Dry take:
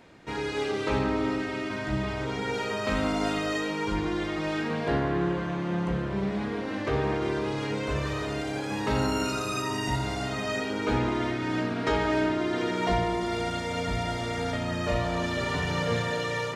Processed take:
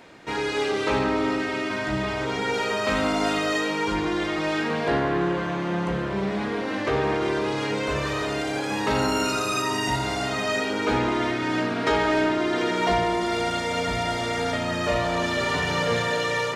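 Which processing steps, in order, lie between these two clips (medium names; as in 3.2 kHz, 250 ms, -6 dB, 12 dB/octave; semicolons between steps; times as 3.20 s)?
bass shelf 200 Hz -9.5 dB; in parallel at -6 dB: saturation -29.5 dBFS, distortion -11 dB; on the sum: trim +3.5 dB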